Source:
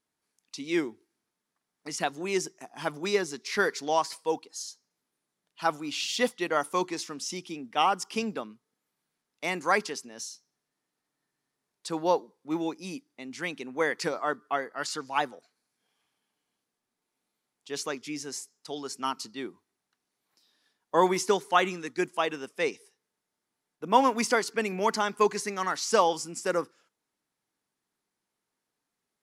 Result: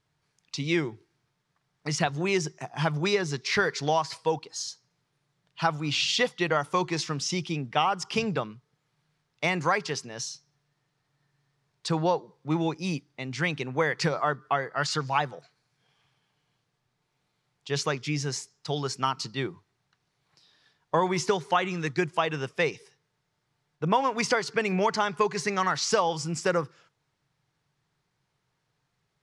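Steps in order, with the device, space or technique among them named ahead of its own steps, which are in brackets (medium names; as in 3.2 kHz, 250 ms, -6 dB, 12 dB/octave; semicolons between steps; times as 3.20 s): jukebox (low-pass 5.4 kHz 12 dB/octave; resonant low shelf 180 Hz +8.5 dB, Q 3; compression 4:1, threshold -30 dBFS, peak gain reduction 12.5 dB); trim +8 dB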